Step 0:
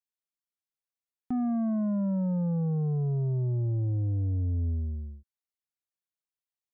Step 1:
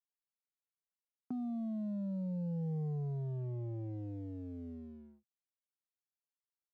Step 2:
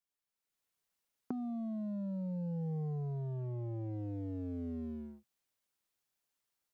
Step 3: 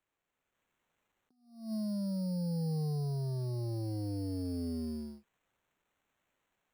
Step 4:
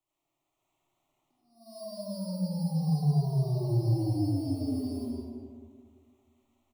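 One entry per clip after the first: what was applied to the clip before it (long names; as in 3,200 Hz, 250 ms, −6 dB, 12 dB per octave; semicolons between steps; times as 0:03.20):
elliptic band-pass filter 140–1,500 Hz, stop band 50 dB; downward compressor 6 to 1, threshold −31 dBFS, peak gain reduction 5 dB; leveller curve on the samples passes 1; level −7 dB
automatic gain control gain up to 8.5 dB; dynamic equaliser 1,100 Hz, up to +5 dB, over −51 dBFS, Q 0.93; downward compressor 10 to 1, threshold −38 dBFS, peak gain reduction 11.5 dB; level +1.5 dB
decimation without filtering 9×; level that may rise only so fast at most 110 dB per second; level +3.5 dB
phaser with its sweep stopped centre 320 Hz, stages 8; single-tap delay 219 ms −17 dB; comb and all-pass reverb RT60 2.1 s, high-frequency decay 0.35×, pre-delay 35 ms, DRR −7 dB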